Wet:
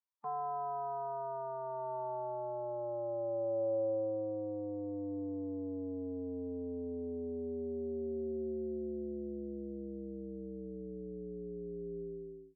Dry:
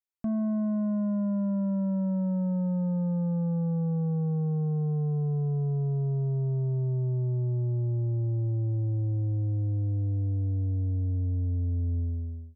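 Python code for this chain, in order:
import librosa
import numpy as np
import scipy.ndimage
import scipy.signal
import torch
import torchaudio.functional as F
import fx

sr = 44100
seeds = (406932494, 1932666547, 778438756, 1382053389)

y = fx.pitch_keep_formants(x, sr, semitones=-7.0)
y = fx.filter_sweep_bandpass(y, sr, from_hz=1000.0, to_hz=380.0, start_s=1.59, end_s=5.18, q=7.8)
y = y * librosa.db_to_amplitude(6.0)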